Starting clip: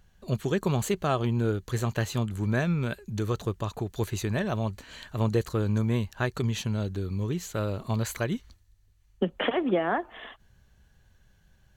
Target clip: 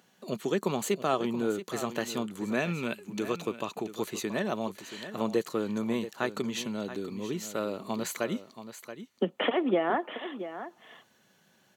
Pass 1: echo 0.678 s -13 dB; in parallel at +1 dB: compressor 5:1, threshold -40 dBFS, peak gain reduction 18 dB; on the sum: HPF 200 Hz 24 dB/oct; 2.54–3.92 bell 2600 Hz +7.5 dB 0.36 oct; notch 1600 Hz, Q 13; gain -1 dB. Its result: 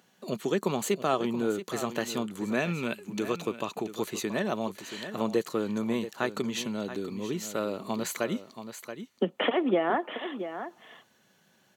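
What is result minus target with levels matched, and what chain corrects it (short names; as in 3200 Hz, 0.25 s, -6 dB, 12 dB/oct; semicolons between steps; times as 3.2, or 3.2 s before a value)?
compressor: peak gain reduction -9 dB
echo 0.678 s -13 dB; in parallel at +1 dB: compressor 5:1, threshold -51 dBFS, peak gain reduction 26.5 dB; on the sum: HPF 200 Hz 24 dB/oct; 2.54–3.92 bell 2600 Hz +7.5 dB 0.36 oct; notch 1600 Hz, Q 13; gain -1 dB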